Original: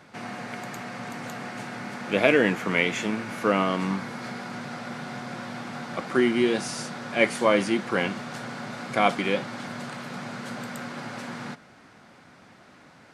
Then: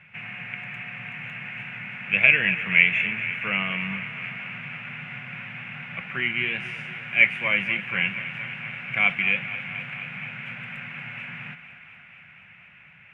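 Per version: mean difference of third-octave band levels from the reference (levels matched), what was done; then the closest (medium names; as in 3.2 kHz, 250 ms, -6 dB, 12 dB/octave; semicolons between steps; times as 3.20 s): 10.5 dB: FFT filter 170 Hz 0 dB, 270 Hz -20 dB, 1.2 kHz -9 dB, 2.6 kHz +13 dB, 4.3 kHz -26 dB; on a send: thinning echo 238 ms, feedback 80%, high-pass 270 Hz, level -13.5 dB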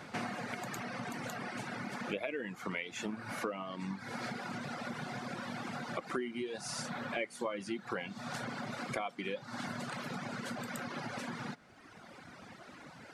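7.0 dB: compression 8:1, threshold -37 dBFS, peak gain reduction 22 dB; reverb removal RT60 1.8 s; trim +3.5 dB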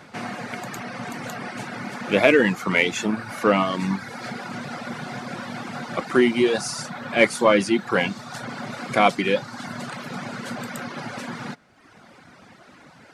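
2.0 dB: reverb removal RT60 1.1 s; in parallel at -6 dB: saturation -20.5 dBFS, distortion -9 dB; on the sum: trim +2.5 dB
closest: third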